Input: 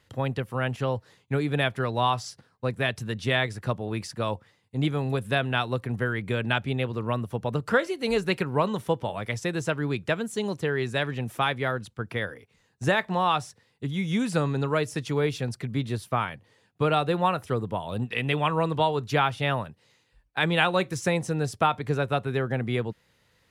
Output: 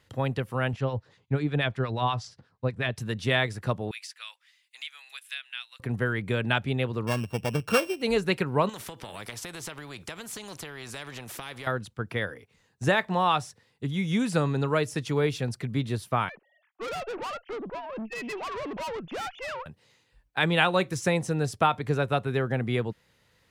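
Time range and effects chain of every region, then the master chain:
0.73–2.98 LPF 5900 Hz + low shelf 100 Hz +8.5 dB + harmonic tremolo 8.3 Hz, crossover 1100 Hz
3.91–5.8 ladder high-pass 1800 Hz, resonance 25% + three-band squash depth 70%
7.07–8.02 sample sorter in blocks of 16 samples + high shelf 4200 Hz -5.5 dB + notch 2000 Hz, Q 7.1
8.69–11.67 compressor 16:1, threshold -30 dBFS + spectral compressor 2:1
16.29–19.66 sine-wave speech + tube stage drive 32 dB, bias 0.45
whole clip: dry

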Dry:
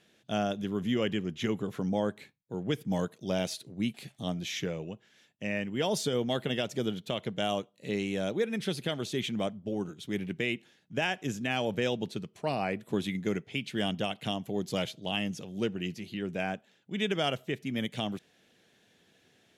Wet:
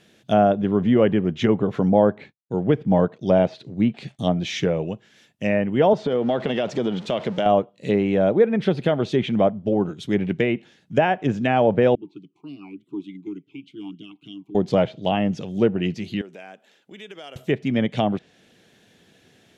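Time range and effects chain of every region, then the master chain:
2.18–4.19 expander -59 dBFS + air absorption 54 m
5.93–7.46 zero-crossing step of -44 dBFS + BPF 150–7800 Hz + compressor, threshold -30 dBFS
11.95–14.55 dynamic EQ 820 Hz, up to -5 dB, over -44 dBFS, Q 1.1 + fixed phaser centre 350 Hz, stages 8 + vowel sweep i-u 3.4 Hz
16.21–17.36 HPF 370 Hz + compressor 2.5:1, threshold -53 dBFS
whole clip: dynamic EQ 680 Hz, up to +7 dB, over -45 dBFS, Q 0.98; treble ducked by the level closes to 1800 Hz, closed at -25 dBFS; low shelf 360 Hz +4.5 dB; gain +7.5 dB

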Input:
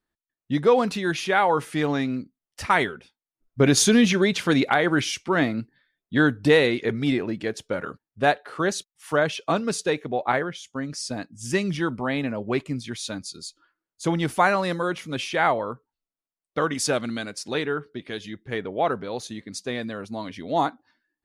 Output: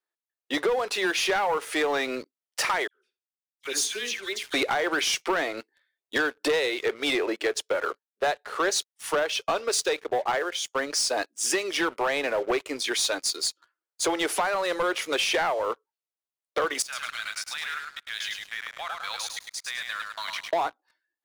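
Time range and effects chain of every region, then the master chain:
2.87–4.54 passive tone stack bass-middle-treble 6-0-2 + dispersion lows, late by 77 ms, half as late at 1800 Hz + flutter echo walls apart 11.7 m, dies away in 0.26 s
6.53–10.52 dynamic EQ 4500 Hz, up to +4 dB, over -37 dBFS, Q 0.74 + three-band expander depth 40%
16.82–20.53 HPF 1200 Hz 24 dB/oct + level quantiser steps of 23 dB + feedback echo 0.104 s, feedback 38%, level -4 dB
whole clip: steep high-pass 380 Hz 36 dB/oct; compressor 10:1, threshold -32 dBFS; sample leveller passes 3; gain +1 dB

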